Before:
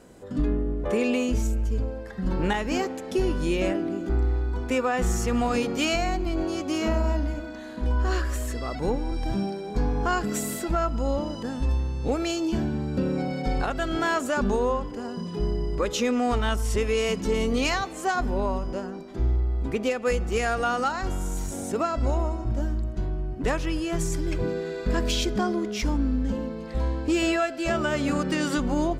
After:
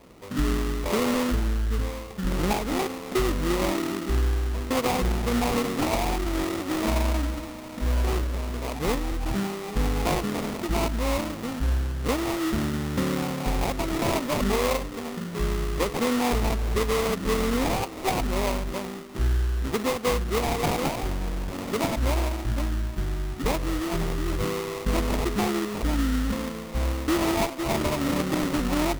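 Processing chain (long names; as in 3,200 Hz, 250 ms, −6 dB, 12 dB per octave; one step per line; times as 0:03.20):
sample-rate reduction 1,600 Hz, jitter 20%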